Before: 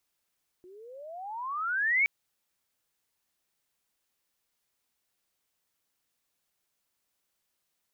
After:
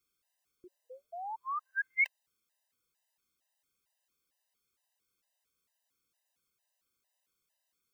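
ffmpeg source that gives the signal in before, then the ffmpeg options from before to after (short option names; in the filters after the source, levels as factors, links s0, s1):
-f lavfi -i "aevalsrc='pow(10,(-20.5+28*(t/1.42-1))/20)*sin(2*PI*352*1.42/(32.5*log(2)/12)*(exp(32.5*log(2)/12*t/1.42)-1))':d=1.42:s=44100"
-af "afftfilt=real='re*gt(sin(2*PI*2.2*pts/sr)*(1-2*mod(floor(b*sr/1024/520),2)),0)':imag='im*gt(sin(2*PI*2.2*pts/sr)*(1-2*mod(floor(b*sr/1024/520),2)),0)':win_size=1024:overlap=0.75"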